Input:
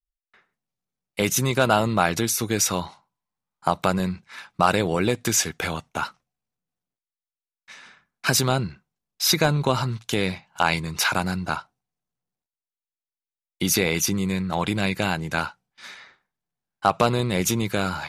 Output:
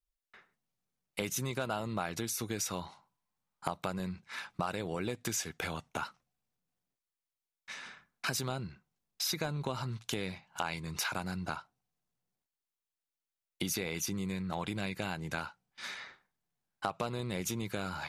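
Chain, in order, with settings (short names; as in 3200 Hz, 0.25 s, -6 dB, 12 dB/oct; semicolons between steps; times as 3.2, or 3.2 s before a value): compressor 3:1, threshold -37 dBFS, peak gain reduction 18 dB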